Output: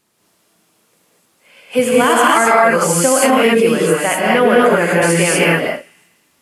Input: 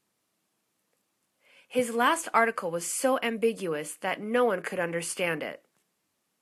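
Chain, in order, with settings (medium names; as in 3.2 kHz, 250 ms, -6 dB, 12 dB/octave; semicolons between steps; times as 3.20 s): feedback echo behind a high-pass 82 ms, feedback 67%, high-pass 2.6 kHz, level -22 dB; gated-style reverb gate 270 ms rising, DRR -5.5 dB; loudness maximiser +12.5 dB; trim -1 dB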